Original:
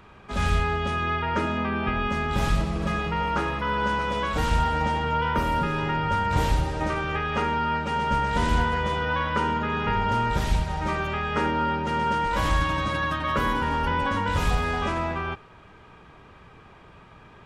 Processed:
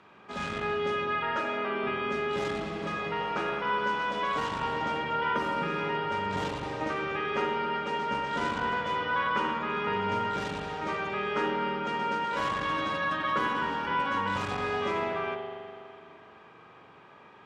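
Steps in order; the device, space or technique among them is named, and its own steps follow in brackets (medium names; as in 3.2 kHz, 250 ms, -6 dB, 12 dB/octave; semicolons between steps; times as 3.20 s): public-address speaker with an overloaded transformer (transformer saturation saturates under 120 Hz; band-pass 210–6800 Hz); 1.36–1.82 s: high-pass 410 Hz -> 170 Hz; spring tank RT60 2.4 s, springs 41 ms, chirp 70 ms, DRR 1 dB; trim -4.5 dB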